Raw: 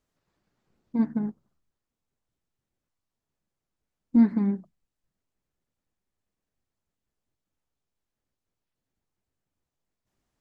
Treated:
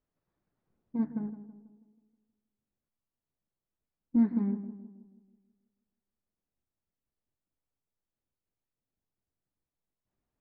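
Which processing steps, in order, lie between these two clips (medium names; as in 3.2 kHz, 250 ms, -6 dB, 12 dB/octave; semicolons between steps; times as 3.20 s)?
low-pass 1.4 kHz 6 dB/octave; on a send: tape echo 161 ms, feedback 57%, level -10 dB, low-pass 1.1 kHz; on the sum: trim -6 dB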